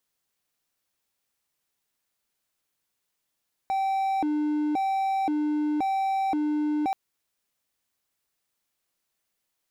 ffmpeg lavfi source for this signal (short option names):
-f lavfi -i "aevalsrc='0.0891*(1-4*abs(mod((537.5*t+237.5/0.95*(0.5-abs(mod(0.95*t,1)-0.5)))+0.25,1)-0.5))':d=3.23:s=44100"